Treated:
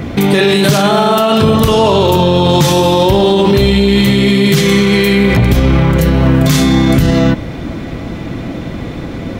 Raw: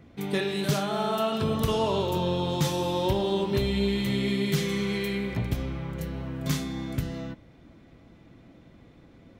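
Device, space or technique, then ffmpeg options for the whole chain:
loud club master: -af "acompressor=threshold=-30dB:ratio=2.5,asoftclip=type=hard:threshold=-22dB,alimiter=level_in=31.5dB:limit=-1dB:release=50:level=0:latency=1,volume=-1dB"

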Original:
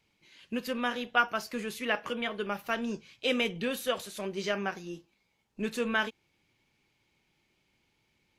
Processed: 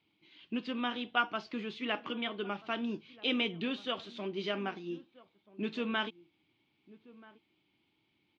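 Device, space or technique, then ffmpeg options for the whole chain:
guitar cabinet: -filter_complex "[0:a]highpass=100,equalizer=frequency=310:width_type=q:width=4:gain=10,equalizer=frequency=520:width_type=q:width=4:gain=-7,equalizer=frequency=1700:width_type=q:width=4:gain=-6,equalizer=frequency=3300:width_type=q:width=4:gain=5,lowpass=frequency=4100:width=0.5412,lowpass=frequency=4100:width=1.3066,asplit=2[link_01][link_02];[link_02]adelay=1283,volume=-20dB,highshelf=frequency=4000:gain=-28.9[link_03];[link_01][link_03]amix=inputs=2:normalize=0,volume=-3dB"

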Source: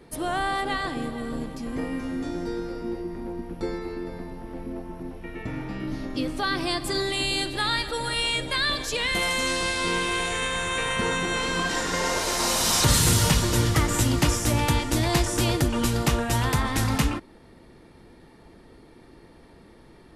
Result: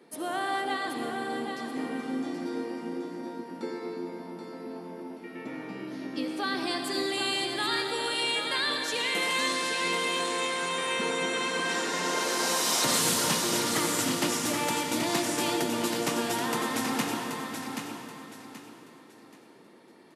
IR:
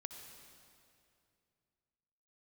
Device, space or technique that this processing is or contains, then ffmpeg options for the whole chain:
stairwell: -filter_complex "[0:a]highpass=frequency=200:width=0.5412,highpass=frequency=200:width=1.3066,aecho=1:1:779|1558|2337|3116:0.473|0.142|0.0426|0.0128[link_01];[1:a]atrim=start_sample=2205[link_02];[link_01][link_02]afir=irnorm=-1:irlink=0"

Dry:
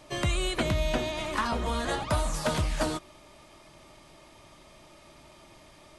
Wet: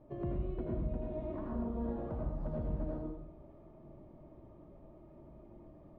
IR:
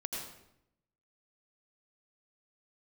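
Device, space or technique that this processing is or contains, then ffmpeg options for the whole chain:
television next door: -filter_complex "[0:a]acompressor=threshold=-34dB:ratio=6,lowpass=480[link_01];[1:a]atrim=start_sample=2205[link_02];[link_01][link_02]afir=irnorm=-1:irlink=0"

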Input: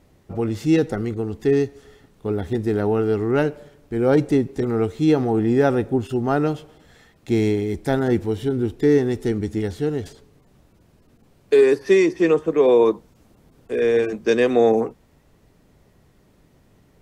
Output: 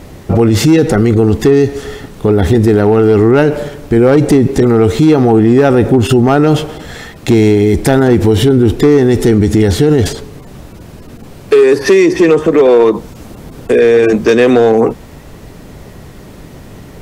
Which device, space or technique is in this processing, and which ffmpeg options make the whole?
loud club master: -af "acompressor=threshold=-20dB:ratio=2.5,asoftclip=type=hard:threshold=-16dB,alimiter=level_in=24.5dB:limit=-1dB:release=50:level=0:latency=1,volume=-1dB"

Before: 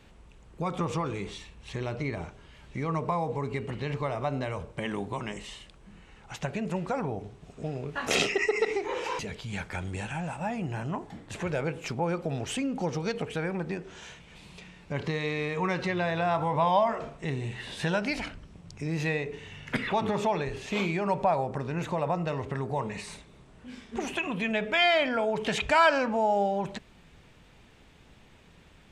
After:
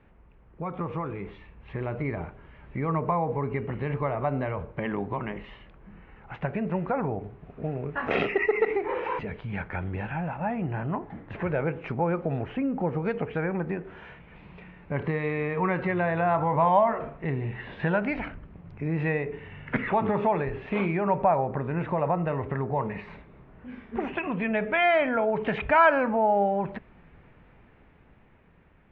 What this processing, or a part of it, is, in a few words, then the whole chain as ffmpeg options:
action camera in a waterproof case: -filter_complex "[0:a]asettb=1/sr,asplit=3[link_01][link_02][link_03];[link_01]atrim=end=12.434[link_04];[link_02]atrim=start=12.43:end=13.05,asetpts=PTS-STARTPTS,afade=type=in:duration=0.004:curve=qsin,afade=type=out:start_time=0.616:duration=0.004:curve=qsin,lowpass=frequency=2000:poles=1[link_05];[link_03]atrim=start=13.046[link_06];[link_04][link_05]acrossfade=duration=0.004:curve1=hsin:curve2=qsin[link_07];[link_07][link_06]acrossfade=duration=0.004:curve1=qsin:curve2=hsin,lowpass=frequency=2200:width=0.5412,lowpass=frequency=2200:width=1.3066,dynaudnorm=framelen=280:gausssize=11:maxgain=5.5dB,volume=-2.5dB" -ar 44100 -c:a aac -b:a 64k

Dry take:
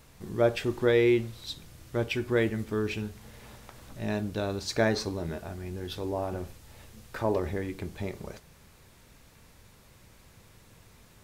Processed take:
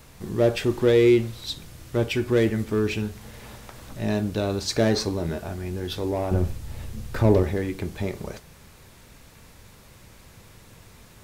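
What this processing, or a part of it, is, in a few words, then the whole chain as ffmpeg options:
one-band saturation: -filter_complex "[0:a]acrossover=split=580|3200[link_01][link_02][link_03];[link_02]asoftclip=type=tanh:threshold=-35.5dB[link_04];[link_01][link_04][link_03]amix=inputs=3:normalize=0,asettb=1/sr,asplit=3[link_05][link_06][link_07];[link_05]atrim=end=6.314[link_08];[link_06]atrim=start=6.31:end=7.43,asetpts=PTS-STARTPTS,afade=type=in:duration=0.004:curve=qsin,afade=type=out:start_time=1.116:duration=0.004:curve=qsin,lowshelf=frequency=230:gain=12[link_09];[link_07]atrim=start=7.426[link_10];[link_08][link_09]acrossfade=duration=0.004:curve1=hsin:curve2=qsin[link_11];[link_11][link_10]acrossfade=duration=0.004:curve1=qsin:curve2=hsin,volume=6.5dB"

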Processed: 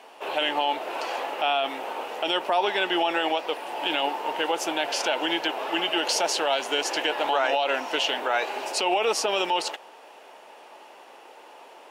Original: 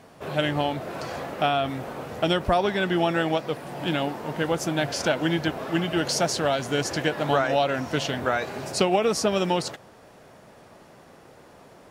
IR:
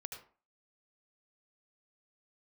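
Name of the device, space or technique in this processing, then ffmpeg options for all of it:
laptop speaker: -af "highpass=frequency=340:width=0.5412,highpass=frequency=340:width=1.3066,equalizer=frequency=880:width_type=o:width=0.37:gain=10,equalizer=frequency=2800:width_type=o:width=0.56:gain=11,alimiter=limit=-14dB:level=0:latency=1:release=23"

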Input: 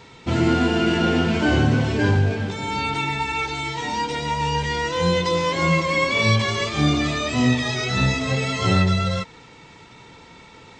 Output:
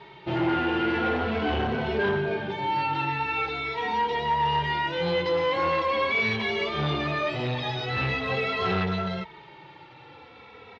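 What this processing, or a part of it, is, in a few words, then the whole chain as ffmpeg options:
barber-pole flanger into a guitar amplifier: -filter_complex "[0:a]asplit=2[link_01][link_02];[link_02]adelay=2.8,afreqshift=-0.43[link_03];[link_01][link_03]amix=inputs=2:normalize=1,asoftclip=type=tanh:threshold=-21dB,highpass=83,equalizer=frequency=110:width_type=q:width=4:gain=-7,equalizer=frequency=170:width_type=q:width=4:gain=-4,equalizer=frequency=260:width_type=q:width=4:gain=-9,equalizer=frequency=400:width_type=q:width=4:gain=4,equalizer=frequency=810:width_type=q:width=4:gain=5,lowpass=frequency=3700:width=0.5412,lowpass=frequency=3700:width=1.3066,volume=1.5dB"

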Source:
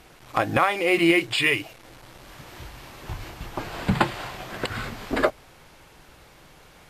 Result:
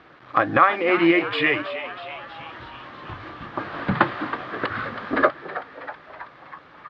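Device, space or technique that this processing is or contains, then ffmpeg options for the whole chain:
frequency-shifting delay pedal into a guitar cabinet: -filter_complex "[0:a]asplit=8[link_01][link_02][link_03][link_04][link_05][link_06][link_07][link_08];[link_02]adelay=322,afreqshift=120,volume=-12.5dB[link_09];[link_03]adelay=644,afreqshift=240,volume=-16.5dB[link_10];[link_04]adelay=966,afreqshift=360,volume=-20.5dB[link_11];[link_05]adelay=1288,afreqshift=480,volume=-24.5dB[link_12];[link_06]adelay=1610,afreqshift=600,volume=-28.6dB[link_13];[link_07]adelay=1932,afreqshift=720,volume=-32.6dB[link_14];[link_08]adelay=2254,afreqshift=840,volume=-36.6dB[link_15];[link_01][link_09][link_10][link_11][link_12][link_13][link_14][link_15]amix=inputs=8:normalize=0,highpass=94,equalizer=frequency=300:width_type=q:width=4:gain=6,equalizer=frequency=560:width_type=q:width=4:gain=4,equalizer=frequency=1200:width_type=q:width=4:gain=10,equalizer=frequency=1700:width_type=q:width=4:gain=7,equalizer=frequency=2700:width_type=q:width=4:gain=-3,lowpass=frequency=3800:width=0.5412,lowpass=frequency=3800:width=1.3066,volume=-1.5dB"

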